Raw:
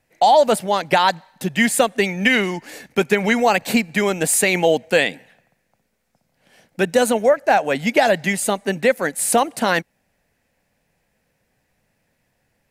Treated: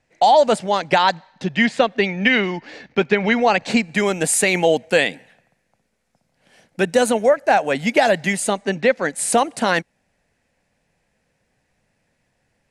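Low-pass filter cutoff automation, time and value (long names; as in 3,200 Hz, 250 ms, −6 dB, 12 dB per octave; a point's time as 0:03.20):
low-pass filter 24 dB per octave
0:00.84 8,100 Hz
0:01.74 4,800 Hz
0:03.38 4,800 Hz
0:04.10 11,000 Hz
0:08.40 11,000 Hz
0:08.95 5,000 Hz
0:09.17 10,000 Hz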